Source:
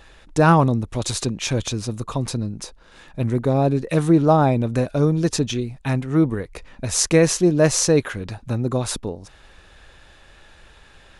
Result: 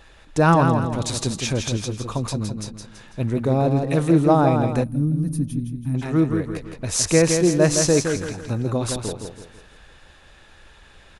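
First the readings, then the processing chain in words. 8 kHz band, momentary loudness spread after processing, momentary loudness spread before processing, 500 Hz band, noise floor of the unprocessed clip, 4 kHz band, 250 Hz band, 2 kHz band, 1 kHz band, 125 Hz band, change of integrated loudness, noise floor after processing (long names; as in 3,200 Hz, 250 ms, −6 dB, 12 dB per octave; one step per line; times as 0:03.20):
−0.5 dB, 13 LU, 14 LU, −0.5 dB, −50 dBFS, −1.0 dB, −0.5 dB, −0.5 dB, −0.5 dB, −0.5 dB, −1.0 dB, −50 dBFS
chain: repeating echo 165 ms, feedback 40%, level −6 dB
gain on a spectral selection 0:04.84–0:05.95, 310–8,800 Hz −21 dB
level −1.5 dB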